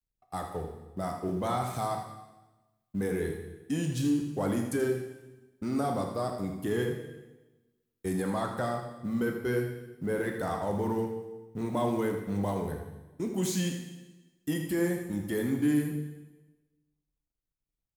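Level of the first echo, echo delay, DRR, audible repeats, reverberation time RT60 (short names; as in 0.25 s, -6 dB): -9.0 dB, 80 ms, 2.0 dB, 1, 1.1 s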